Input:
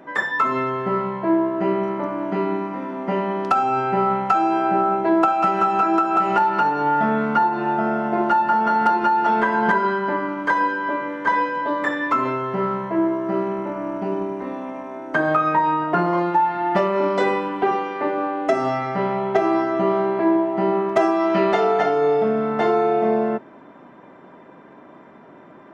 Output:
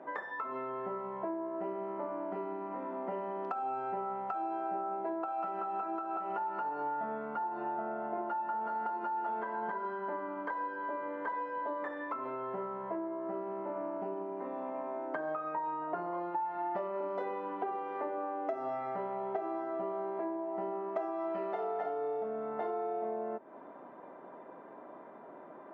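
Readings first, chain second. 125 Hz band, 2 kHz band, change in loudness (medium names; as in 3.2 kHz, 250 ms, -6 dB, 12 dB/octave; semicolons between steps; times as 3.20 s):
-24.0 dB, -20.5 dB, -16.5 dB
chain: compression, threshold -30 dBFS, peak gain reduction 16 dB; band-pass filter 670 Hz, Q 1; trim -2 dB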